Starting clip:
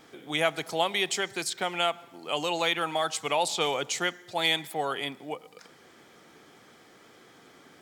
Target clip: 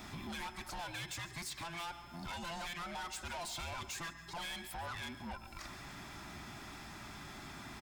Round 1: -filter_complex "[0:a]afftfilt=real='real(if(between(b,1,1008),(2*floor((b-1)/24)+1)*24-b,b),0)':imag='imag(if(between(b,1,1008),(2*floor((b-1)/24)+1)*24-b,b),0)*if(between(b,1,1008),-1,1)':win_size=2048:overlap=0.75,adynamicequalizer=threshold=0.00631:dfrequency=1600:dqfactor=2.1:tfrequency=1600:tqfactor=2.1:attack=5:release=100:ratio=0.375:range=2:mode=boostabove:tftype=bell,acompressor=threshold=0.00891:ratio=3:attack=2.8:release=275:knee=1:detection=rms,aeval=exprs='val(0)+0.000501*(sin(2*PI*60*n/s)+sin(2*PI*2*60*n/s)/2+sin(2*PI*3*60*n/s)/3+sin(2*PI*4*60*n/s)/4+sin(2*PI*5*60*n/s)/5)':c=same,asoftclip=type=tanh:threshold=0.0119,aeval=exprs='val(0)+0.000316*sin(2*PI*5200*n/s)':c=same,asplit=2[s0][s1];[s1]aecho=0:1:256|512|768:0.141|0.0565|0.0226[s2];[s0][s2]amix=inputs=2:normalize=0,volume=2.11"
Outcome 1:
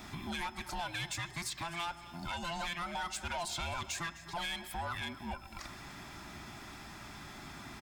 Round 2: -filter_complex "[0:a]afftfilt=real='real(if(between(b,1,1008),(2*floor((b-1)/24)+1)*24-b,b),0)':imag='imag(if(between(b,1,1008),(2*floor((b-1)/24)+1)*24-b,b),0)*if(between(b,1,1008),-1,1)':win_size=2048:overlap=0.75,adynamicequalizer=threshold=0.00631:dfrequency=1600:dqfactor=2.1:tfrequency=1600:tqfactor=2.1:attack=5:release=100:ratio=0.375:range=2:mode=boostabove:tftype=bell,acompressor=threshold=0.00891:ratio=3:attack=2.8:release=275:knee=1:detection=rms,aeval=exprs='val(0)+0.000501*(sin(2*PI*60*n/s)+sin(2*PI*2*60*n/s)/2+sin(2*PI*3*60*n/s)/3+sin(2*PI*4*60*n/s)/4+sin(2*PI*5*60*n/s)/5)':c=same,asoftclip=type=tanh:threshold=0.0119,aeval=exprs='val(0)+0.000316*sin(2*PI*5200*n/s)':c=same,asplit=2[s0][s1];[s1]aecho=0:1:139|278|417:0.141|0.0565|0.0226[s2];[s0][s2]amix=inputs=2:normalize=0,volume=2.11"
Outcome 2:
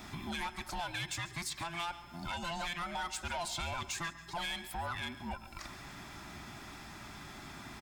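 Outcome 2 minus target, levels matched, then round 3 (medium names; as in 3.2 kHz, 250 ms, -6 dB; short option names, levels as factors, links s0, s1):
saturation: distortion -6 dB
-filter_complex "[0:a]afftfilt=real='real(if(between(b,1,1008),(2*floor((b-1)/24)+1)*24-b,b),0)':imag='imag(if(between(b,1,1008),(2*floor((b-1)/24)+1)*24-b,b),0)*if(between(b,1,1008),-1,1)':win_size=2048:overlap=0.75,adynamicequalizer=threshold=0.00631:dfrequency=1600:dqfactor=2.1:tfrequency=1600:tqfactor=2.1:attack=5:release=100:ratio=0.375:range=2:mode=boostabove:tftype=bell,acompressor=threshold=0.00891:ratio=3:attack=2.8:release=275:knee=1:detection=rms,aeval=exprs='val(0)+0.000501*(sin(2*PI*60*n/s)+sin(2*PI*2*60*n/s)/2+sin(2*PI*3*60*n/s)/3+sin(2*PI*4*60*n/s)/4+sin(2*PI*5*60*n/s)/5)':c=same,asoftclip=type=tanh:threshold=0.00473,aeval=exprs='val(0)+0.000316*sin(2*PI*5200*n/s)':c=same,asplit=2[s0][s1];[s1]aecho=0:1:139|278|417:0.141|0.0565|0.0226[s2];[s0][s2]amix=inputs=2:normalize=0,volume=2.11"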